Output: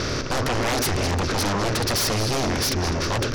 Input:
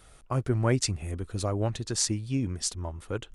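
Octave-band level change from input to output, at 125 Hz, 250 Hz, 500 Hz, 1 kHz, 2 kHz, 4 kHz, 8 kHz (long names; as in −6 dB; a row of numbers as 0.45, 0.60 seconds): +3.0, +5.0, +7.5, +13.0, +14.5, +11.0, +4.5 decibels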